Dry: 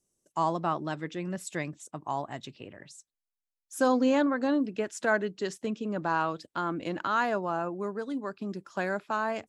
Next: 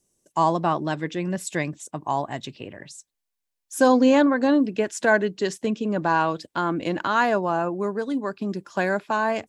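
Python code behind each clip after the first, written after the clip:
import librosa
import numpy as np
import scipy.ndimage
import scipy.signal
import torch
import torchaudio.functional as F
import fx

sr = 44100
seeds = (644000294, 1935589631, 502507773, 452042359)

y = fx.notch(x, sr, hz=1300.0, q=8.9)
y = y * librosa.db_to_amplitude(7.5)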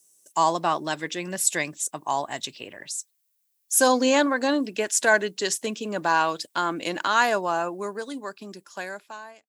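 y = fx.fade_out_tail(x, sr, length_s=1.97)
y = fx.riaa(y, sr, side='recording')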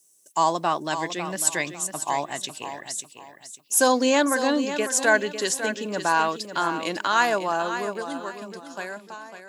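y = fx.echo_feedback(x, sr, ms=550, feedback_pct=30, wet_db=-10.0)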